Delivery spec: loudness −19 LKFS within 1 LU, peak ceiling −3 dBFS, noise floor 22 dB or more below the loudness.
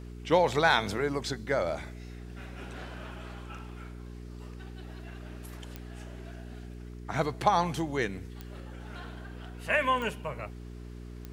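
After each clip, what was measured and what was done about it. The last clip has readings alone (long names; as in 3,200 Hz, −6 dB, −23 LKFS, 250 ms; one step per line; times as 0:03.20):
number of clicks 4; mains hum 60 Hz; hum harmonics up to 420 Hz; level of the hum −41 dBFS; integrated loudness −29.5 LKFS; sample peak −10.5 dBFS; target loudness −19.0 LKFS
→ click removal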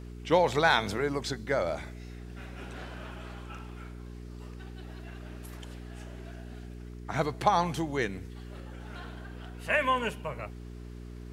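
number of clicks 0; mains hum 60 Hz; hum harmonics up to 420 Hz; level of the hum −41 dBFS
→ hum removal 60 Hz, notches 7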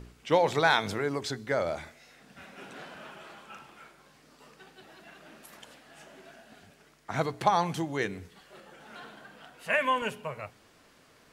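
mains hum none found; integrated loudness −29.0 LKFS; sample peak −10.5 dBFS; target loudness −19.0 LKFS
→ level +10 dB
brickwall limiter −3 dBFS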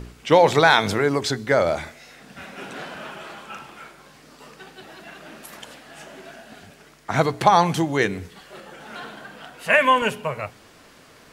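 integrated loudness −19.5 LKFS; sample peak −3.0 dBFS; background noise floor −50 dBFS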